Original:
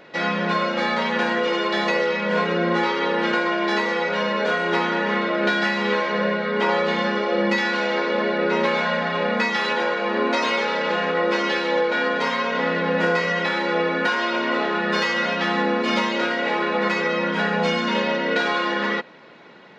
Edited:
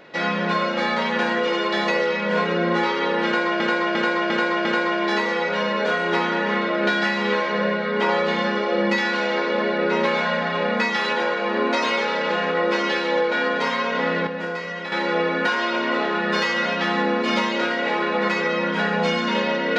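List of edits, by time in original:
3.25–3.6 loop, 5 plays
12.87–13.52 gain -8 dB

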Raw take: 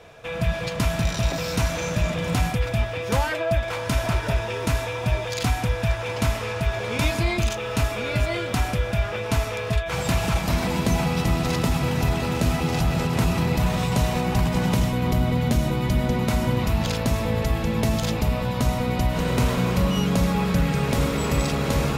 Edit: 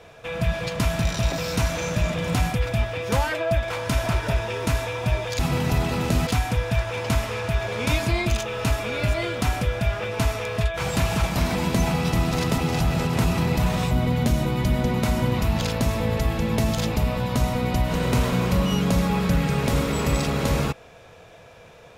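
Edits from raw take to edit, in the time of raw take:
11.7–12.58 move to 5.39
13.91–15.16 cut

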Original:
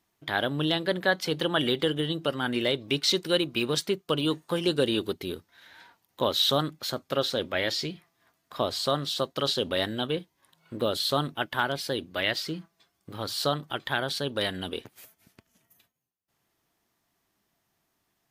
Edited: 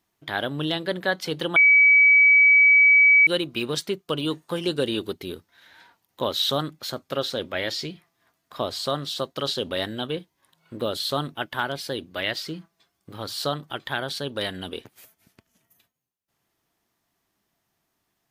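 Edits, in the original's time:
1.56–3.27 bleep 2280 Hz -11.5 dBFS

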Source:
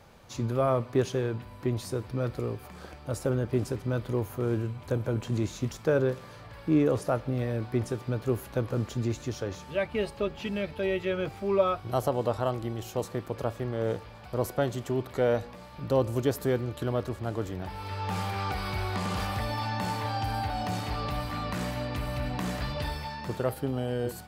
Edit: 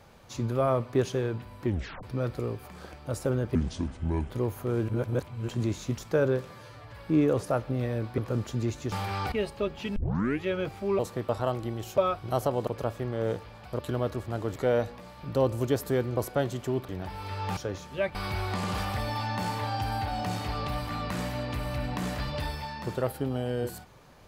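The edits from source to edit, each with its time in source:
1.66 tape stop 0.37 s
3.55–4.04 speed 65%
4.62–5.22 reverse
6.23–6.54 stretch 1.5×
7.76–8.6 cut
9.34–9.92 swap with 18.17–18.57
10.56 tape start 0.48 s
11.59–12.28 swap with 12.97–13.27
14.39–15.11 swap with 16.72–17.49

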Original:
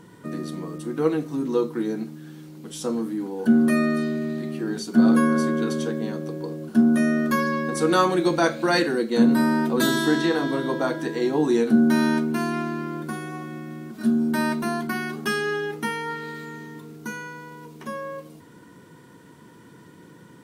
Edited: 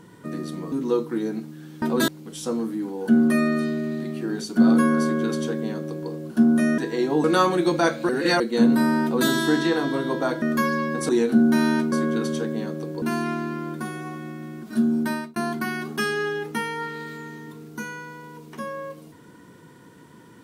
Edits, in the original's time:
0.72–1.36 cut
5.38–6.48 copy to 12.3
7.16–7.83 swap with 11.01–11.47
8.68–8.99 reverse
9.62–9.88 copy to 2.46
14.29–14.64 fade out

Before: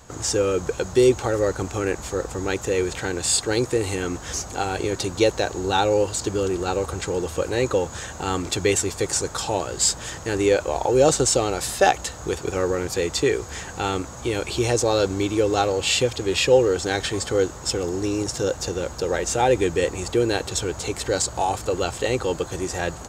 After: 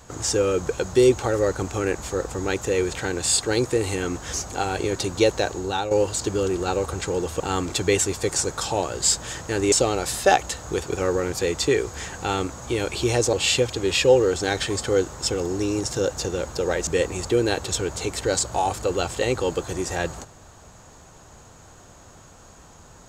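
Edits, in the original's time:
5.47–5.91 fade out, to -9.5 dB
7.4–8.17 cut
10.49–11.27 cut
14.88–15.76 cut
19.3–19.7 cut

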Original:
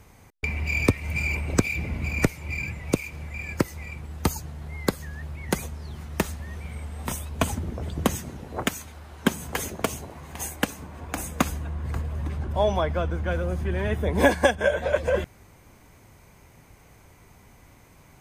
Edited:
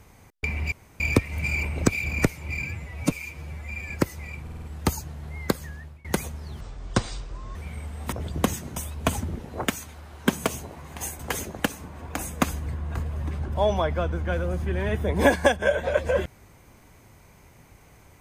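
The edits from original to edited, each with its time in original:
0.72 insert room tone 0.28 s
1.78–2.06 cut
2.65–3.48 stretch 1.5×
4.01 stutter 0.05 s, 5 plays
5.04–5.43 fade out, to -23.5 dB
5.99–6.54 speed 58%
7.11–7.74 move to 8.38
9.44–9.84 move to 10.58
11.65–11.93 reverse

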